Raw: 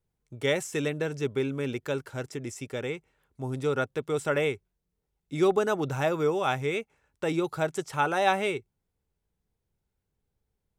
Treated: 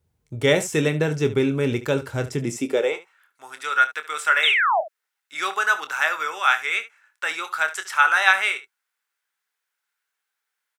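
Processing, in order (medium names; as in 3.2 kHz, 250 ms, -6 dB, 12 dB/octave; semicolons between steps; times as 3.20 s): high-pass sweep 69 Hz -> 1.5 kHz, 2.21–3.18 s; painted sound fall, 4.43–4.81 s, 590–3900 Hz -27 dBFS; early reflections 26 ms -10.5 dB, 72 ms -15.5 dB; trim +7.5 dB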